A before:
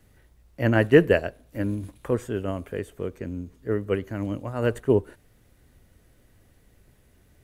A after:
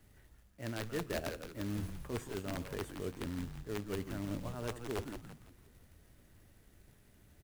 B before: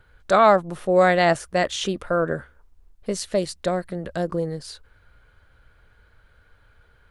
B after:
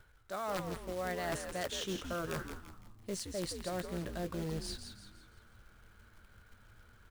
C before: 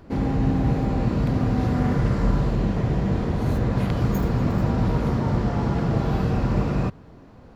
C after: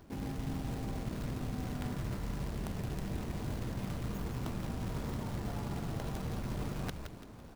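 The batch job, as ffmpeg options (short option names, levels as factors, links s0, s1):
-filter_complex "[0:a]bandreject=f=500:w=12,areverse,acompressor=threshold=0.0316:ratio=12,areverse,acrusher=bits=3:mode=log:mix=0:aa=0.000001,aeval=exprs='(mod(15.8*val(0)+1,2)-1)/15.8':c=same,asplit=6[s0][s1][s2][s3][s4][s5];[s1]adelay=169,afreqshift=-120,volume=0.447[s6];[s2]adelay=338,afreqshift=-240,volume=0.184[s7];[s3]adelay=507,afreqshift=-360,volume=0.075[s8];[s4]adelay=676,afreqshift=-480,volume=0.0309[s9];[s5]adelay=845,afreqshift=-600,volume=0.0126[s10];[s0][s6][s7][s8][s9][s10]amix=inputs=6:normalize=0,volume=0.562"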